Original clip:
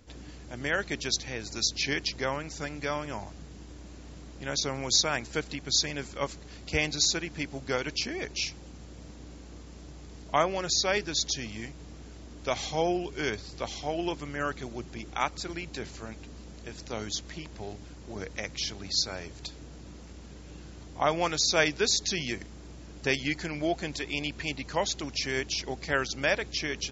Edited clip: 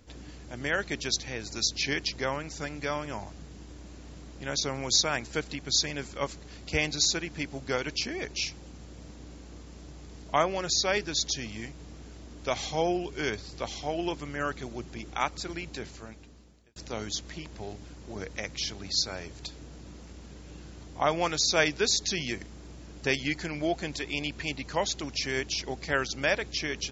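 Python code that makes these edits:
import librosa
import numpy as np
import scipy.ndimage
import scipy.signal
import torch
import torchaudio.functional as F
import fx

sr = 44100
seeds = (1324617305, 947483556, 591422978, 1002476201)

y = fx.edit(x, sr, fx.fade_out_span(start_s=15.68, length_s=1.08), tone=tone)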